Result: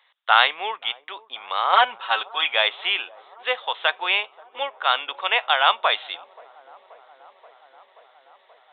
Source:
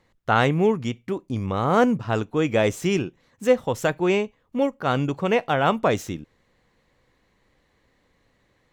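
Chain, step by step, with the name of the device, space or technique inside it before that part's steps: 1.72–2.54 comb 5.3 ms, depth 84%; musical greeting card (downsampling 8000 Hz; HPF 800 Hz 24 dB/oct; bell 3600 Hz +12 dB 0.59 oct); dark delay 0.53 s, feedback 78%, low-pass 730 Hz, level -20 dB; gain +5 dB

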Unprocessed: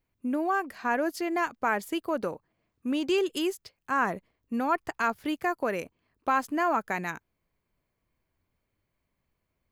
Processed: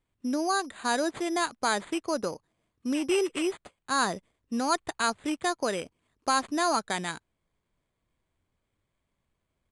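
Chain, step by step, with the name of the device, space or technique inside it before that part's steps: crushed at another speed (playback speed 2×; sample-and-hold 4×; playback speed 0.5×)

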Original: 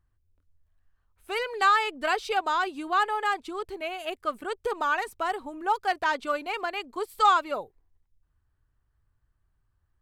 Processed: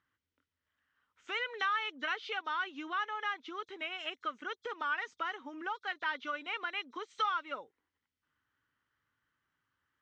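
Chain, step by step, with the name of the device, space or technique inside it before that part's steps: hearing aid with frequency lowering (nonlinear frequency compression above 3300 Hz 1.5:1; compressor 2.5:1, threshold -41 dBFS, peak gain reduction 16.5 dB; speaker cabinet 260–5900 Hz, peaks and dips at 260 Hz +4 dB, 390 Hz -5 dB, 690 Hz -9 dB, 1400 Hz +7 dB, 2000 Hz +8 dB, 3100 Hz +8 dB)

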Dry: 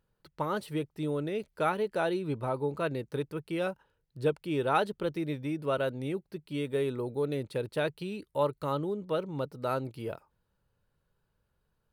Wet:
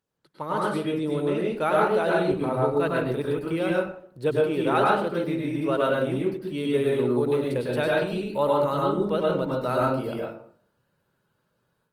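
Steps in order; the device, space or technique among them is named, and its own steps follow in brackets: far-field microphone of a smart speaker (reverb RT60 0.55 s, pre-delay 96 ms, DRR -3.5 dB; HPF 140 Hz 12 dB/oct; AGC gain up to 8.5 dB; gain -5 dB; Opus 24 kbps 48000 Hz)

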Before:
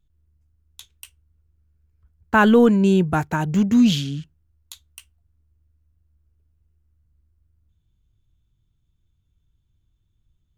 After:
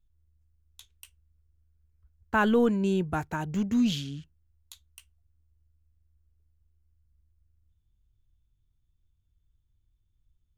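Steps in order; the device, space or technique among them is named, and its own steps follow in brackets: low shelf boost with a cut just above (low shelf 87 Hz +7.5 dB; bell 160 Hz -4 dB 1 oct); gain -8.5 dB

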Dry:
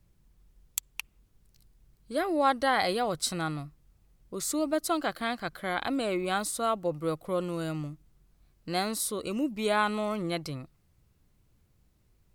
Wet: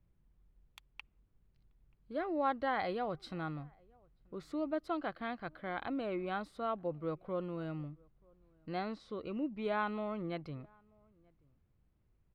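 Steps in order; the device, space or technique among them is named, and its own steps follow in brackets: 8.78–9.62 LPF 7200 Hz 24 dB/oct; shout across a valley (air absorption 370 m; outdoor echo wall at 160 m, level -29 dB); gain -6.5 dB

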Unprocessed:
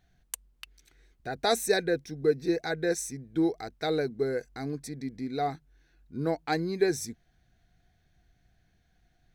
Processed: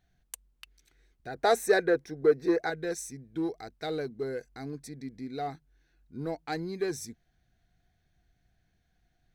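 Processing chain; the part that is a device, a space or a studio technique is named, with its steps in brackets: parallel distortion (in parallel at -5.5 dB: hard clip -26.5 dBFS, distortion -8 dB); 1.34–2.7 on the sum: band shelf 810 Hz +8.5 dB 2.9 oct; gain -8 dB

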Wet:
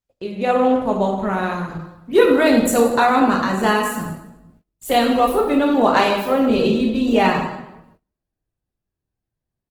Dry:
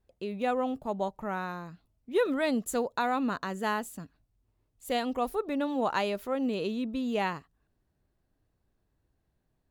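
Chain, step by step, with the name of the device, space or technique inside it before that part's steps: 0.78–2.13 bell 810 Hz -2.5 dB 0.57 oct; feedback echo 0.165 s, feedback 26%, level -18 dB; speakerphone in a meeting room (reverb RT60 0.95 s, pre-delay 12 ms, DRR 0 dB; speakerphone echo 0.15 s, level -25 dB; AGC gain up to 4 dB; gate -58 dBFS, range -23 dB; gain +7 dB; Opus 16 kbps 48000 Hz)

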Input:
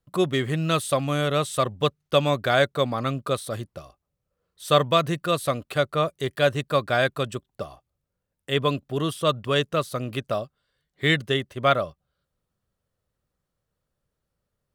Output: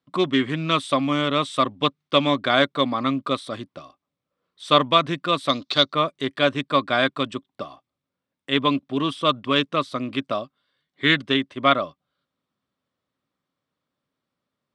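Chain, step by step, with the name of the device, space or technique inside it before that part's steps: 5.49–5.93 band shelf 4900 Hz +15 dB 1.1 oct; full-range speaker at full volume (Doppler distortion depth 0.1 ms; speaker cabinet 170–7500 Hz, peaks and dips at 270 Hz +10 dB, 460 Hz -4 dB, 1100 Hz +6 dB, 2200 Hz +5 dB, 3500 Hz +6 dB, 6700 Hz -7 dB)

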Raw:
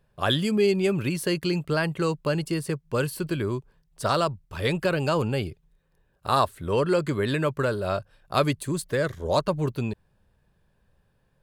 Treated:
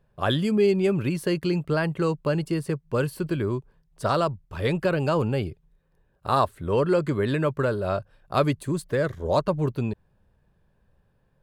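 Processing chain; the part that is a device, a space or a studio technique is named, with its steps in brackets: behind a face mask (high shelf 2200 Hz -8 dB); gain +1.5 dB

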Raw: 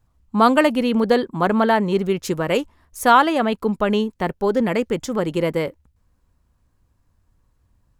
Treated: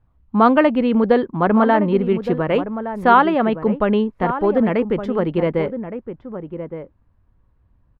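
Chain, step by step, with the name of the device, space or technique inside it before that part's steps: shout across a valley (air absorption 440 m; outdoor echo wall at 200 m, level -10 dB); gain +3 dB

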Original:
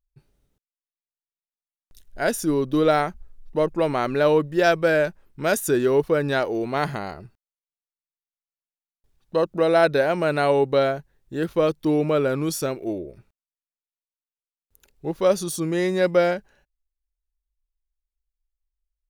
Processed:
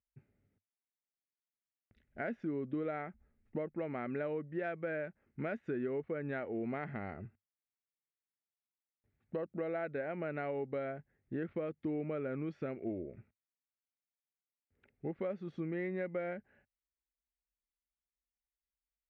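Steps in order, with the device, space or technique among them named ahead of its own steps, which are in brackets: bass amplifier (compressor 4:1, threshold -31 dBFS, peak gain reduction 15 dB; speaker cabinet 79–2300 Hz, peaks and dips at 98 Hz +8 dB, 230 Hz +8 dB, 1000 Hz -9 dB, 2100 Hz +7 dB); gain -6.5 dB

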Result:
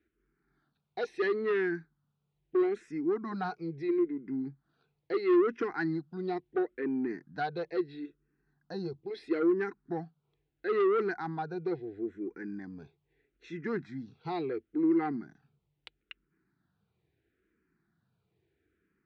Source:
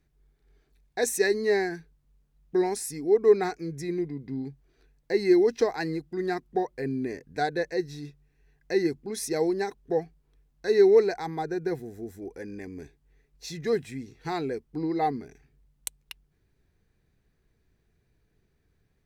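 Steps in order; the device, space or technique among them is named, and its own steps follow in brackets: 8.06–9.04 bell 2200 Hz -11.5 dB 0.8 oct; barber-pole phaser into a guitar amplifier (endless phaser -0.75 Hz; soft clip -24 dBFS, distortion -8 dB; speaker cabinet 110–3900 Hz, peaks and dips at 190 Hz +4 dB, 330 Hz +8 dB, 570 Hz -5 dB, 1400 Hz +9 dB); gain -2 dB

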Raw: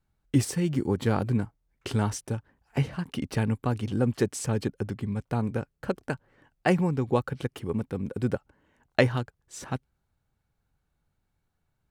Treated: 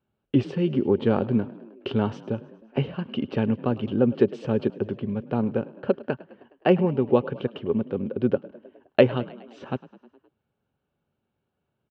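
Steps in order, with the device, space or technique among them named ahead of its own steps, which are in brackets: frequency-shifting delay pedal into a guitar cabinet (frequency-shifting echo 0.104 s, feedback 63%, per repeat +36 Hz, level -20 dB; speaker cabinet 110–3400 Hz, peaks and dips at 230 Hz +6 dB, 390 Hz +8 dB, 560 Hz +7 dB, 2000 Hz -7 dB, 2900 Hz +6 dB)

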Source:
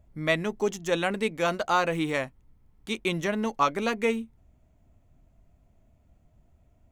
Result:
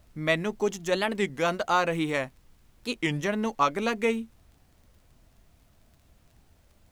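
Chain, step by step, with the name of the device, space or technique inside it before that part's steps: warped LP (record warp 33 1/3 rpm, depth 250 cents; crackle 22/s; pink noise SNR 37 dB)

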